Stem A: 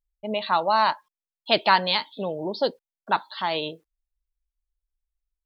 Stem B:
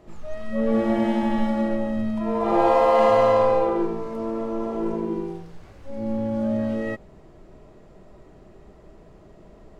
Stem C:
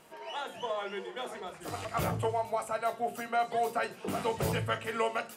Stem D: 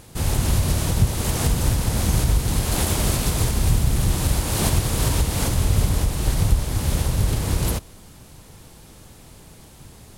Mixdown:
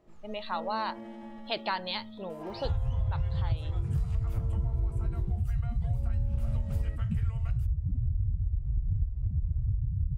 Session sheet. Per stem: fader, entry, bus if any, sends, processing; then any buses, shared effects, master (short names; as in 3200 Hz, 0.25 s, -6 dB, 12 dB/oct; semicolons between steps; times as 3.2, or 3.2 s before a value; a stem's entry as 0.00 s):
-10.5 dB, 0.00 s, no send, dry
-13.5 dB, 0.00 s, no send, limiter -16 dBFS, peak gain reduction 8.5 dB; auto duck -7 dB, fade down 1.35 s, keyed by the first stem
-3.5 dB, 2.30 s, no send, HPF 670 Hz; compressor 3:1, threshold -42 dBFS, peak gain reduction 11.5 dB
+1.5 dB, 2.50 s, no send, loudest bins only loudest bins 4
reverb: off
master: compressor, threshold -26 dBFS, peak gain reduction 15 dB